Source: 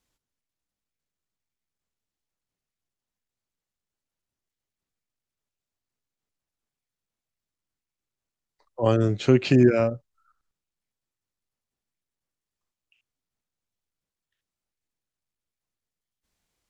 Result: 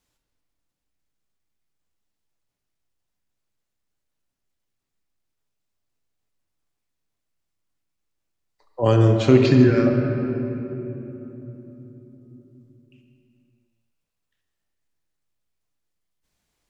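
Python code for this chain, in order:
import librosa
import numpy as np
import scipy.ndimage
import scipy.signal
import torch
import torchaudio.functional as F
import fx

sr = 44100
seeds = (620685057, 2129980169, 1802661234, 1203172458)

y = fx.fixed_phaser(x, sr, hz=2800.0, stages=6, at=(9.46, 9.87))
y = fx.room_shoebox(y, sr, seeds[0], volume_m3=220.0, walls='hard', distance_m=0.39)
y = F.gain(torch.from_numpy(y), 2.5).numpy()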